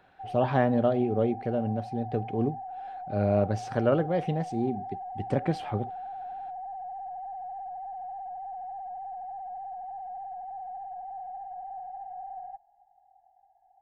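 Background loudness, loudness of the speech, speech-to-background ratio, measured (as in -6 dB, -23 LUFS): -39.5 LUFS, -28.5 LUFS, 11.0 dB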